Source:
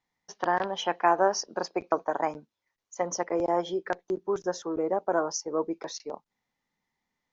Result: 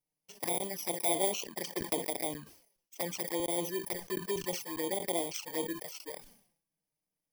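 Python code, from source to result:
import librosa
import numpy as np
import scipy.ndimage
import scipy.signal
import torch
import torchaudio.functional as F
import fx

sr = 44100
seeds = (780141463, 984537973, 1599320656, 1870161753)

y = fx.bit_reversed(x, sr, seeds[0], block=32)
y = fx.env_flanger(y, sr, rest_ms=6.5, full_db=-24.0)
y = fx.sustainer(y, sr, db_per_s=94.0)
y = y * 10.0 ** (-4.0 / 20.0)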